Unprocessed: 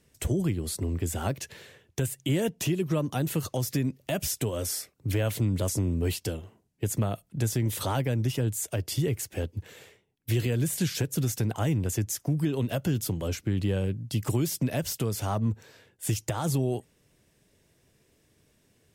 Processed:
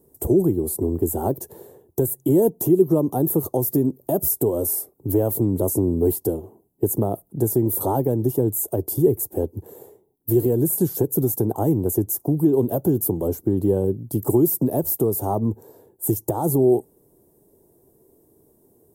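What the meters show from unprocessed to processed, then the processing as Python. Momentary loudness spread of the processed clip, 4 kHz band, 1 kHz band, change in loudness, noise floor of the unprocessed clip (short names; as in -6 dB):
7 LU, under -10 dB, +7.0 dB, +8.0 dB, -68 dBFS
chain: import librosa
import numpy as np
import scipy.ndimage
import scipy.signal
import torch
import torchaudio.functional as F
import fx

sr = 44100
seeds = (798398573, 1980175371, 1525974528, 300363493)

y = fx.curve_eq(x, sr, hz=(110.0, 220.0, 380.0, 560.0, 860.0, 1400.0, 2500.0, 3600.0, 5500.0, 13000.0), db=(0, 4, 14, 5, 8, -11, -25, -17, -12, 14))
y = y * librosa.db_to_amplitude(1.5)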